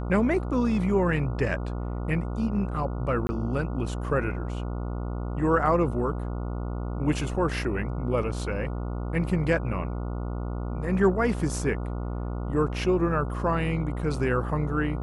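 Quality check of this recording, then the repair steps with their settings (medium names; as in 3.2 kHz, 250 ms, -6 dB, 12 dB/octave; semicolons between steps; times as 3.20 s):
buzz 60 Hz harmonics 24 -31 dBFS
3.27–3.29 s: dropout 20 ms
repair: de-hum 60 Hz, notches 24; interpolate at 3.27 s, 20 ms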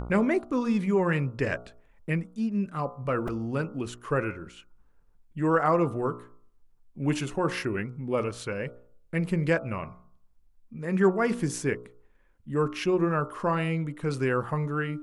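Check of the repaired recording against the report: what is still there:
nothing left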